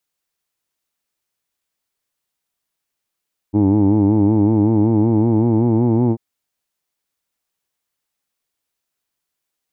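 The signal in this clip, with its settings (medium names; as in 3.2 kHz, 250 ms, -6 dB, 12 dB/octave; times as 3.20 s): formant-synthesis vowel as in who'd, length 2.64 s, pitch 100 Hz, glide +3 st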